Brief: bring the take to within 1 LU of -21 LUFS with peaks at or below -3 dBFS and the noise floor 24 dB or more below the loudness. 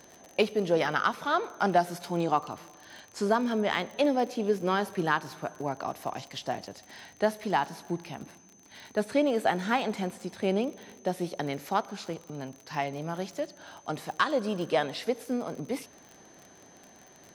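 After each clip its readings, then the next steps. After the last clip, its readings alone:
tick rate 46 per s; steady tone 6.2 kHz; tone level -57 dBFS; loudness -30.0 LUFS; peak level -11.0 dBFS; loudness target -21.0 LUFS
-> de-click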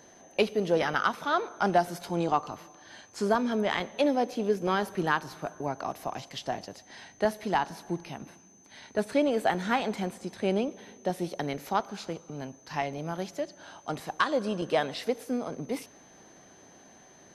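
tick rate 0.12 per s; steady tone 6.2 kHz; tone level -57 dBFS
-> band-stop 6.2 kHz, Q 30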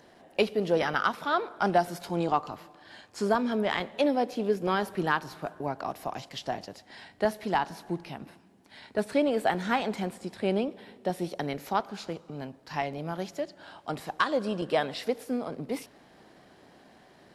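steady tone not found; loudness -30.5 LUFS; peak level -11.5 dBFS; loudness target -21.0 LUFS
-> trim +9.5 dB; peak limiter -3 dBFS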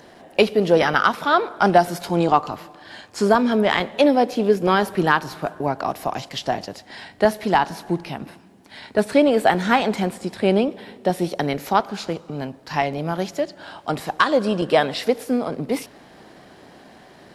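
loudness -21.0 LUFS; peak level -3.0 dBFS; noise floor -48 dBFS

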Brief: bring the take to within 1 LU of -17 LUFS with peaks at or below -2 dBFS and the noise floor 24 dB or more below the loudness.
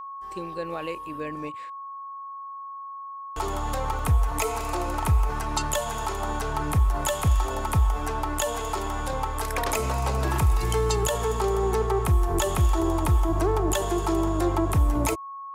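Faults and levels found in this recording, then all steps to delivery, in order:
dropouts 4; longest dropout 1.9 ms; steady tone 1.1 kHz; tone level -35 dBFS; loudness -26.0 LUFS; peak level -11.5 dBFS; loudness target -17.0 LUFS
-> interpolate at 3.99/4.59/9.13/14.28 s, 1.9 ms; band-stop 1.1 kHz, Q 30; trim +9 dB

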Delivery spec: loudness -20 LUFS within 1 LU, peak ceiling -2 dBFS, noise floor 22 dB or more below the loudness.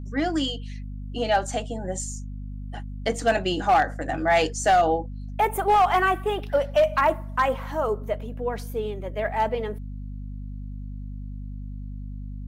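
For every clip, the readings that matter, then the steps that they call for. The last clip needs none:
clipped samples 0.5%; clipping level -13.0 dBFS; hum 50 Hz; highest harmonic 250 Hz; hum level -32 dBFS; loudness -24.5 LUFS; peak level -13.0 dBFS; loudness target -20.0 LUFS
-> clip repair -13 dBFS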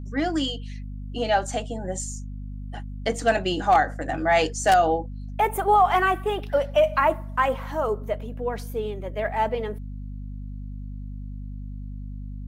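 clipped samples 0.0%; hum 50 Hz; highest harmonic 250 Hz; hum level -32 dBFS
-> de-hum 50 Hz, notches 5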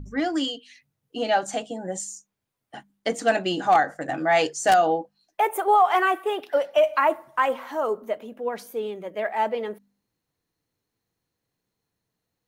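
hum not found; loudness -24.0 LUFS; peak level -4.5 dBFS; loudness target -20.0 LUFS
-> trim +4 dB; peak limiter -2 dBFS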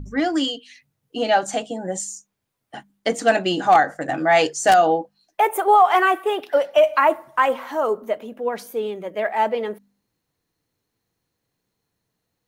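loudness -20.0 LUFS; peak level -2.0 dBFS; noise floor -78 dBFS

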